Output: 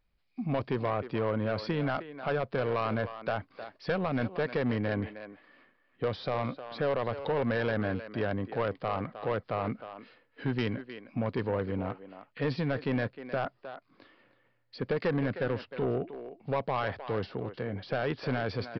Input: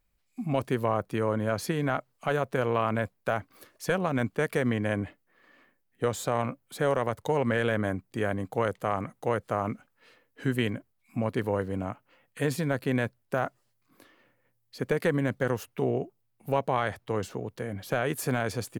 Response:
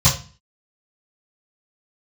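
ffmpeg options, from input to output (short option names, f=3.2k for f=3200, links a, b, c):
-filter_complex "[0:a]asplit=2[a][b];[b]adelay=310,highpass=300,lowpass=3.4k,asoftclip=type=hard:threshold=-23dB,volume=-12dB[c];[a][c]amix=inputs=2:normalize=0,aresample=11025,asoftclip=type=tanh:threshold=-22dB,aresample=44100"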